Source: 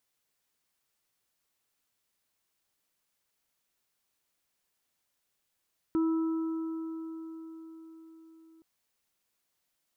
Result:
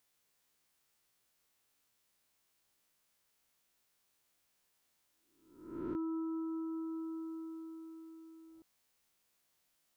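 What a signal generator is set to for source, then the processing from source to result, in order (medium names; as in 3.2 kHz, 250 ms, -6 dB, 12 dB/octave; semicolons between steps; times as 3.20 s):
sine partials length 2.67 s, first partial 324 Hz, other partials 977/1310 Hz, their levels -19/-18 dB, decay 5.00 s, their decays 4.03/4.19 s, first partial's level -23.5 dB
reverse spectral sustain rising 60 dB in 0.74 s; compression 3:1, threshold -39 dBFS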